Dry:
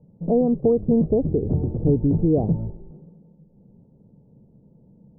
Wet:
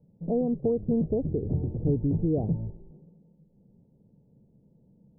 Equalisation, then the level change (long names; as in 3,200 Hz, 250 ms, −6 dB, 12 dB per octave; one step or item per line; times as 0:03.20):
low-pass filter 1,000 Hz 12 dB per octave
dynamic equaliser 110 Hz, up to +3 dB, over −36 dBFS, Q 1.3
−7.5 dB